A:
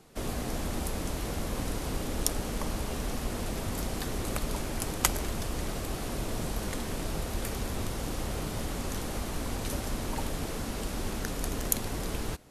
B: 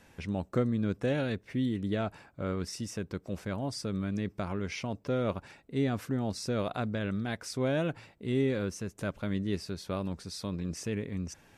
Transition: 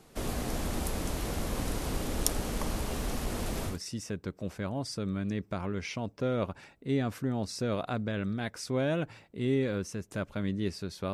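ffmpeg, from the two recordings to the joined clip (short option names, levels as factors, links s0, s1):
-filter_complex "[0:a]asettb=1/sr,asplit=3[s0][s1][s2];[s0]atrim=end=2.784[s3];[s1]atrim=start=2.78:end=3.79,asetpts=PTS-STARTPTS,afade=t=in:d=0.004:c=qsin,afade=t=out:st=1.006:d=0.004:c=qsin,volume=17.8,asoftclip=hard,volume=0.0562[s4];[s2]atrim=start=3.786[s5];[s3][s4]acrossfade=d=0.004:c1=hsin:c2=qsin[s6];[s6][s5]acrossfade=d=0.004:c1=qsin:c2=hsin,apad=whole_dur=11.13,atrim=end=11.13,atrim=end=3.79,asetpts=PTS-STARTPTS[s7];[1:a]atrim=start=2.52:end=10,asetpts=PTS-STARTPTS[s8];[s7][s8]acrossfade=d=0.14:c1=tri:c2=tri"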